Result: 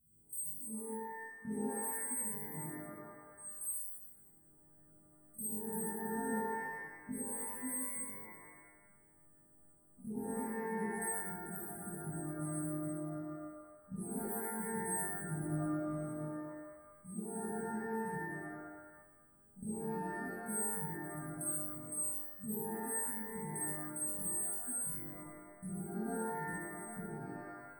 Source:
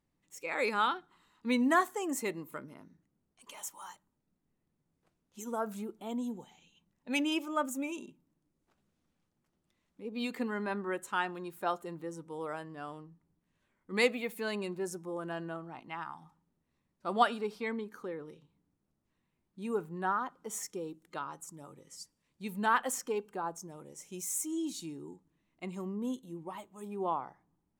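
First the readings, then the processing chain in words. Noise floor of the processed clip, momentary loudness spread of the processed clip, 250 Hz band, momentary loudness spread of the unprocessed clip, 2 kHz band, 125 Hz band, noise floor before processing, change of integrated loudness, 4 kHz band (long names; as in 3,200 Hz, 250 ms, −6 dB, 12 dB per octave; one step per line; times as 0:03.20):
−65 dBFS, 12 LU, −4.0 dB, 18 LU, −8.0 dB, +4.0 dB, −81 dBFS, −4.0 dB, below −35 dB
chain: every partial snapped to a pitch grid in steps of 3 semitones
output level in coarse steps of 20 dB
linear-phase brick-wall band-stop 250–8,300 Hz
downward compressor, threshold −51 dBFS, peak gain reduction 12.5 dB
reverb with rising layers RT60 1.1 s, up +12 semitones, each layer −2 dB, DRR −7.5 dB
level +6 dB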